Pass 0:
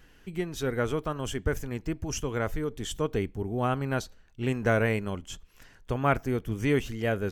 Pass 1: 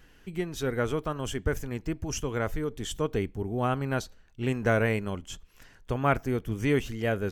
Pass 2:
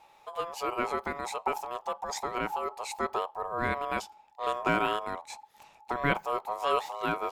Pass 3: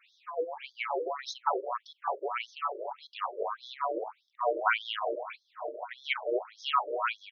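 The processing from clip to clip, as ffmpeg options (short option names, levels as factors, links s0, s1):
-af anull
-af "aeval=exprs='val(0)*sin(2*PI*850*n/s)':c=same"
-filter_complex "[0:a]acrossover=split=200|880[s0][s1][s2];[s0]acrusher=bits=5:mode=log:mix=0:aa=0.000001[s3];[s1]aecho=1:1:610|1159|1653|2098|2498:0.631|0.398|0.251|0.158|0.1[s4];[s3][s4][s2]amix=inputs=3:normalize=0,afftfilt=real='re*between(b*sr/1024,420*pow(4700/420,0.5+0.5*sin(2*PI*1.7*pts/sr))/1.41,420*pow(4700/420,0.5+0.5*sin(2*PI*1.7*pts/sr))*1.41)':imag='im*between(b*sr/1024,420*pow(4700/420,0.5+0.5*sin(2*PI*1.7*pts/sr))/1.41,420*pow(4700/420,0.5+0.5*sin(2*PI*1.7*pts/sr))*1.41)':win_size=1024:overlap=0.75,volume=2"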